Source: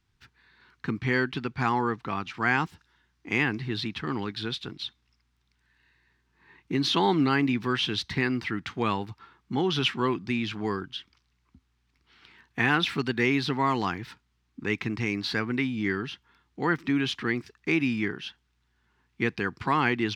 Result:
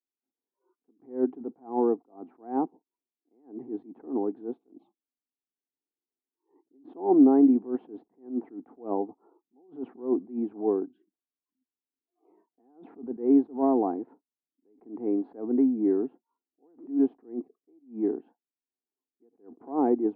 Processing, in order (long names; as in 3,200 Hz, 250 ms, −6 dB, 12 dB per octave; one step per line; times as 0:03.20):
Chebyshev band-pass filter 260–740 Hz, order 3
noise reduction from a noise print of the clip's start 27 dB
level that may rise only so fast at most 180 dB per second
level +8 dB